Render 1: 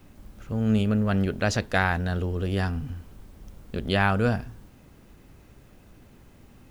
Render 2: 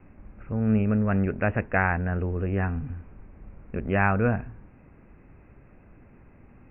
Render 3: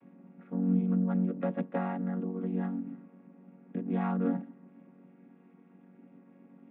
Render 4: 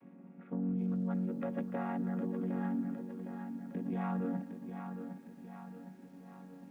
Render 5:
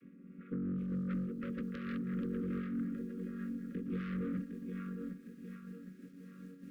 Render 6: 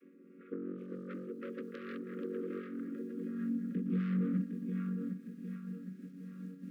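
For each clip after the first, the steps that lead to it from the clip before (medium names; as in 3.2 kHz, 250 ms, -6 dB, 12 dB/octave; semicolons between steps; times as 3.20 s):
steep low-pass 2.6 kHz 96 dB/octave
vocoder on a held chord major triad, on F#3; dynamic bell 2 kHz, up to -7 dB, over -54 dBFS, Q 2.1; compression 1.5:1, threshold -33 dBFS, peak gain reduction 6.5 dB
peak limiter -28 dBFS, peak gain reduction 10 dB; bit-crushed delay 760 ms, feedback 55%, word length 11-bit, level -7.5 dB
Chebyshev shaper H 5 -7 dB, 6 -25 dB, 7 -18 dB, 8 -20 dB, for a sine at -25 dBFS; Chebyshev band-stop 510–1200 Hz, order 4; random flutter of the level, depth 60%; trim -3.5 dB
high-pass sweep 370 Hz -> 180 Hz, 2.80–3.87 s; trim -1.5 dB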